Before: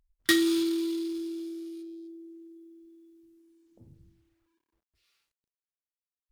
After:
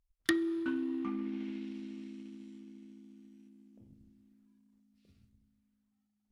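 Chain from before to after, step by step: echoes that change speed 0.294 s, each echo -4 st, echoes 2, each echo -6 dB; treble ducked by the level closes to 1200 Hz, closed at -24.5 dBFS; transient shaper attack +6 dB, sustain +2 dB; on a send: reverb RT60 4.9 s, pre-delay 48 ms, DRR 23 dB; on the sum: gain -8 dB

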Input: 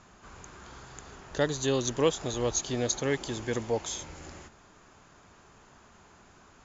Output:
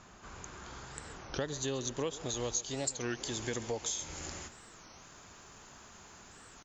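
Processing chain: high shelf 3400 Hz +2.5 dB, from 2.29 s +11 dB; compressor 4:1, threshold -34 dBFS, peak gain reduction 15.5 dB; echo 0.135 s -17 dB; record warp 33 1/3 rpm, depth 250 cents

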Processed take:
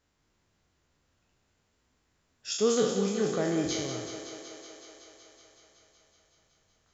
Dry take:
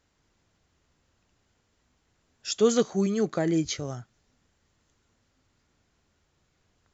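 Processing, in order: spectral trails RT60 0.79 s; 3.4–3.94 crackle 210/s -50 dBFS; thinning echo 0.187 s, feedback 79%, high-pass 210 Hz, level -8.5 dB; gain -5.5 dB

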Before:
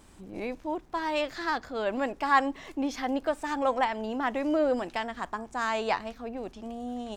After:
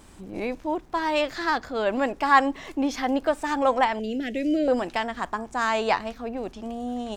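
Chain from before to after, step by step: 3.99–4.68 Chebyshev band-stop 460–2300 Hz, order 2; gain +5 dB

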